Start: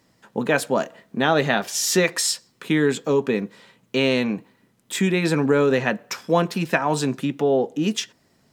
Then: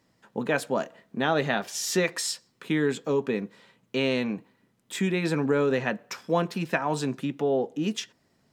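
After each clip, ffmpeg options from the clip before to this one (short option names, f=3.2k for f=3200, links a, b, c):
-af "highshelf=f=5.8k:g=-4,volume=-5.5dB"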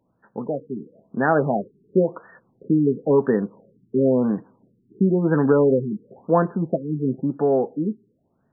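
-af "dynaudnorm=f=180:g=11:m=9dB,afftfilt=real='re*lt(b*sr/1024,420*pow(1900/420,0.5+0.5*sin(2*PI*0.97*pts/sr)))':imag='im*lt(b*sr/1024,420*pow(1900/420,0.5+0.5*sin(2*PI*0.97*pts/sr)))':win_size=1024:overlap=0.75"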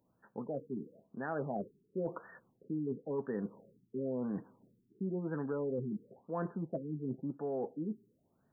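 -af "areverse,acompressor=threshold=-29dB:ratio=4,areverse,crystalizer=i=1.5:c=0,volume=-7dB"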